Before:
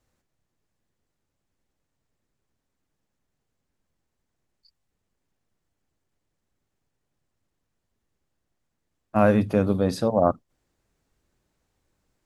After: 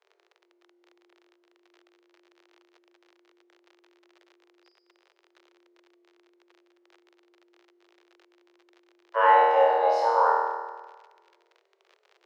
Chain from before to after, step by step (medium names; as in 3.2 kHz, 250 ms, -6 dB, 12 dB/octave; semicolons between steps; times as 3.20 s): treble shelf 6.6 kHz +8 dB; flutter echo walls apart 4.3 m, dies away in 1.3 s; crackle 50 per s -32 dBFS; frequency shift +350 Hz; distance through air 210 m; trim -4 dB